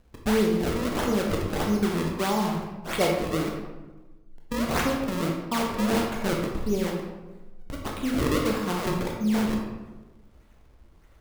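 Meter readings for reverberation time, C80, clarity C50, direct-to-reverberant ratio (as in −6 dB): 1.2 s, 5.5 dB, 3.0 dB, −0.5 dB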